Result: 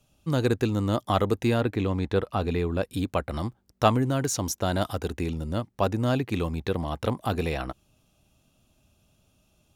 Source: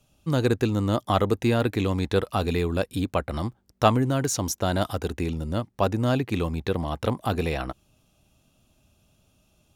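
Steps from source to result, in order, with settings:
0:01.60–0:02.83: high-shelf EQ 4,200 Hz −11.5 dB
level −1.5 dB

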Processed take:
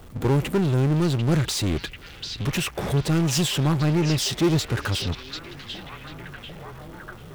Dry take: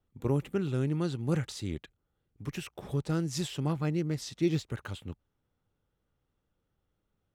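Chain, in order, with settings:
power curve on the samples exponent 0.5
echo through a band-pass that steps 743 ms, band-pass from 3,700 Hz, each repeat −0.7 octaves, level −3.5 dB
level +3.5 dB

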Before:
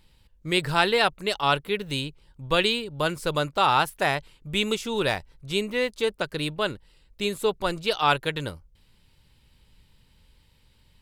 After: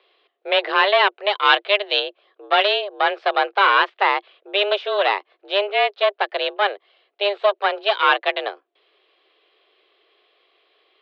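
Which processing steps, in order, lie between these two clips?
harmonic generator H 5 −17 dB, 8 −16 dB, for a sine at −5.5 dBFS
0:01.45–0:02.00: high-shelf EQ 2,200 Hz +8.5 dB
single-sideband voice off tune +200 Hz 210–3,500 Hz
level +2 dB

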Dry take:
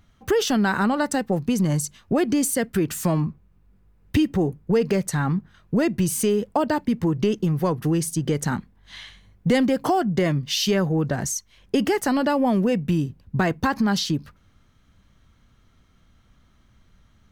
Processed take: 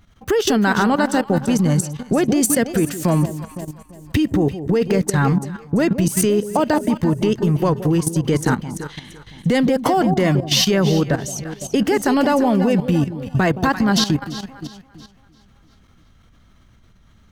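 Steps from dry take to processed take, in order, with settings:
delay that swaps between a low-pass and a high-pass 170 ms, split 850 Hz, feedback 64%, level −8 dB
output level in coarse steps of 12 dB
level +8.5 dB

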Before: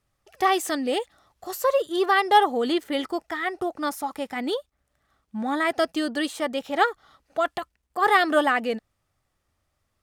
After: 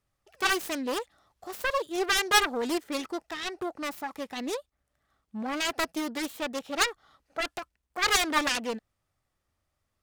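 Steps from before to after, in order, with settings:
phase distortion by the signal itself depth 0.86 ms
level −5 dB

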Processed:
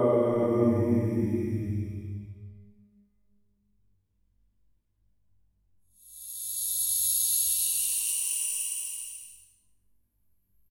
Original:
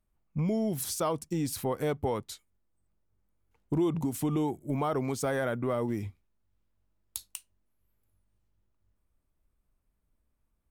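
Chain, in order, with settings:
spectral envelope exaggerated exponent 1.5
parametric band 13,000 Hz +9.5 dB 2.6 octaves
notch filter 1,300 Hz, Q 9.1
hum removal 204.2 Hz, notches 10
extreme stretch with random phases 5.2×, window 0.50 s, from 0:05.77
repeating echo 110 ms, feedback 37%, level −14 dB
level +7 dB

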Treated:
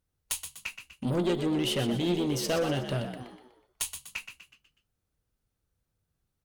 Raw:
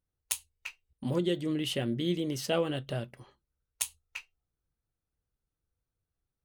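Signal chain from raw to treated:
tube saturation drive 29 dB, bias 0.25
on a send: echo with shifted repeats 123 ms, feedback 45%, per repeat +62 Hz, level −9 dB
on the sum: level +6 dB

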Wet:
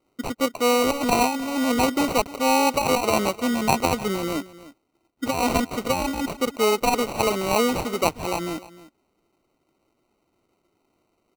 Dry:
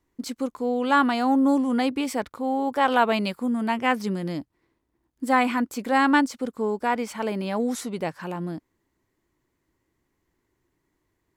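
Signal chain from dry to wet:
compressor whose output falls as the input rises −23 dBFS, ratio −0.5
high-pass filter 330 Hz 12 dB per octave
decimation without filtering 26×
single-tap delay 304 ms −18 dB
level +6 dB

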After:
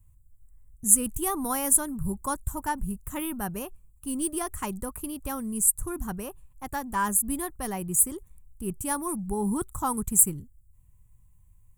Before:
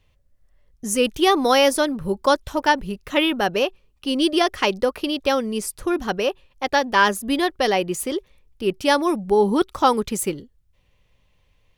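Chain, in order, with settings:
drawn EQ curve 120 Hz 0 dB, 540 Hz −26 dB, 990 Hz −14 dB, 3,200 Hz −29 dB, 5,300 Hz −27 dB, 7,600 Hz +4 dB
level +5.5 dB

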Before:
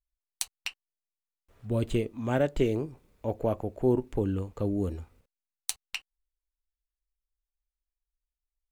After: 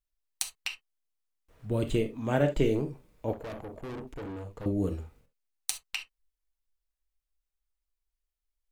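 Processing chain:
on a send at −5.5 dB: convolution reverb, pre-delay 6 ms
0:03.33–0:04.66: on the sum: tube saturation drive 37 dB, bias 0.65

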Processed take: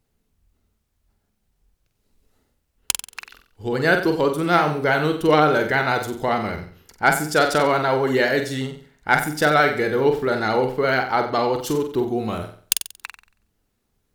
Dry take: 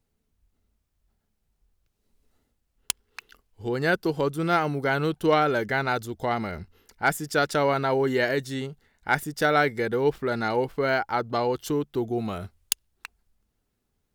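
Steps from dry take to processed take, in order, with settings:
harmonic and percussive parts rebalanced percussive +3 dB
flutter between parallel walls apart 7.9 metres, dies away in 0.46 s
pitch vibrato 12 Hz 35 cents
level +2.5 dB

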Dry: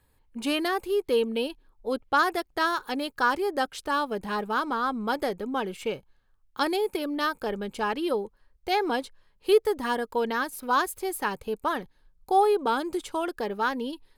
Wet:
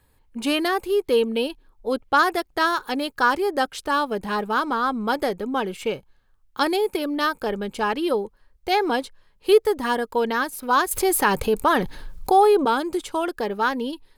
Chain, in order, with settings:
0:10.91–0:12.65: envelope flattener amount 50%
level +4.5 dB

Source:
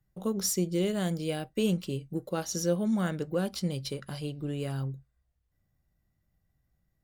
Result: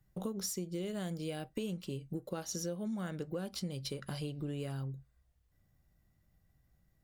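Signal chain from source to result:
downward compressor 6 to 1, threshold −40 dBFS, peak gain reduction 17 dB
level +3.5 dB

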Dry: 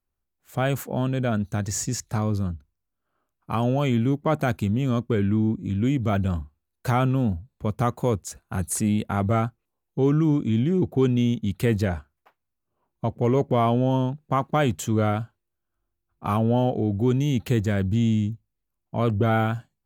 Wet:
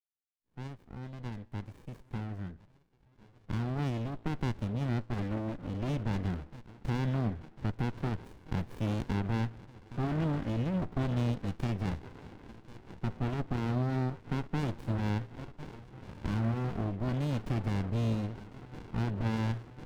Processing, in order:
fade in at the beginning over 6.04 s
drawn EQ curve 200 Hz 0 dB, 2,000 Hz +11 dB, 6,600 Hz −6 dB
on a send: delay with a band-pass on its return 1,049 ms, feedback 77%, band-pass 910 Hz, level −14 dB
on the sum: brickwall limiter −11 dBFS, peak gain reduction 8 dB
in parallel at −2 dB: downward compressor, threshold −32 dBFS, peak gain reduction 15 dB
on the sum: formants moved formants +4 semitones
dynamic equaliser 1,100 Hz, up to −3 dB, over −36 dBFS, Q 2.6
tuned comb filter 57 Hz, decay 0.84 s, harmonics all, mix 40%
windowed peak hold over 65 samples
level −7.5 dB

